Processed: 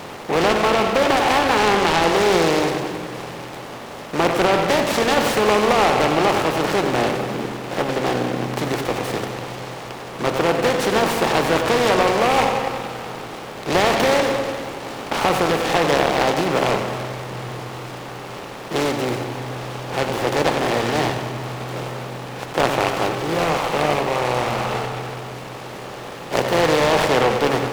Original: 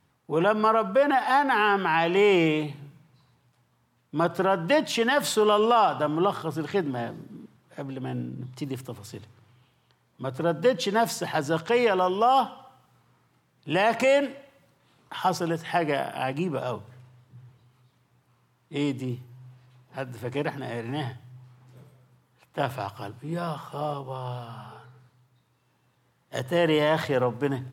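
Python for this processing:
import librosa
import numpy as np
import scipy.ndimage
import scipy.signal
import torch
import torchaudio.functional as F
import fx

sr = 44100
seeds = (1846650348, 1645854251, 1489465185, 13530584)

y = fx.bin_compress(x, sr, power=0.4)
y = fx.echo_filtered(y, sr, ms=95, feedback_pct=74, hz=3400.0, wet_db=-9.0)
y = fx.noise_mod_delay(y, sr, seeds[0], noise_hz=1300.0, depth_ms=0.085)
y = y * 10.0 ** (-1.5 / 20.0)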